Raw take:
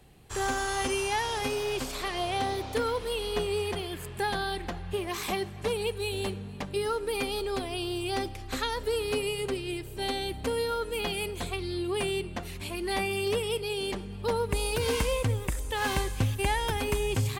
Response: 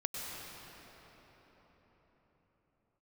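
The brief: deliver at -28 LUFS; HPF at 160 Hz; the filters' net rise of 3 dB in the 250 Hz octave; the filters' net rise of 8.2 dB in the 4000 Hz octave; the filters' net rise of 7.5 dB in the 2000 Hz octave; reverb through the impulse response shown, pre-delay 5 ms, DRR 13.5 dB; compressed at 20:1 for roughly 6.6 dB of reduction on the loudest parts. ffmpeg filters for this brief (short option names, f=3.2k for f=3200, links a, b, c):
-filter_complex "[0:a]highpass=160,equalizer=f=250:t=o:g=5,equalizer=f=2k:t=o:g=7,equalizer=f=4k:t=o:g=8,acompressor=threshold=-27dB:ratio=20,asplit=2[a][b];[1:a]atrim=start_sample=2205,adelay=5[c];[b][c]afir=irnorm=-1:irlink=0,volume=-16.5dB[d];[a][d]amix=inputs=2:normalize=0,volume=3dB"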